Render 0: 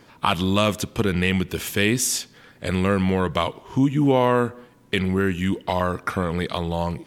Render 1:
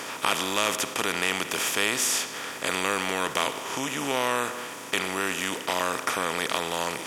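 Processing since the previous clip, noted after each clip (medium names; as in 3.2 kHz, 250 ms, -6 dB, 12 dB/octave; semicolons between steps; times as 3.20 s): spectral levelling over time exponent 0.4; high-pass 1.1 kHz 6 dB/octave; trim -5 dB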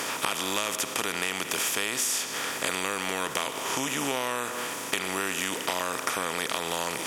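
peaking EQ 15 kHz +4.5 dB 1.7 oct; compression 5:1, threshold -28 dBFS, peak gain reduction 9.5 dB; trim +3 dB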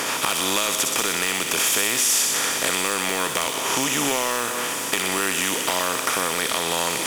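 in parallel at -6 dB: integer overflow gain 17 dB; on the sum: feedback echo behind a high-pass 62 ms, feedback 78%, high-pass 3.3 kHz, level -3.5 dB; trim +2.5 dB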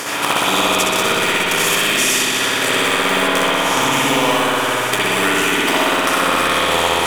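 transient shaper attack +3 dB, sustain -10 dB; spring tank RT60 3.7 s, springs 58 ms, chirp 30 ms, DRR -8.5 dB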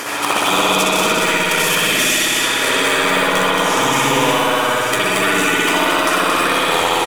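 coarse spectral quantiser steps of 15 dB; delay 226 ms -4.5 dB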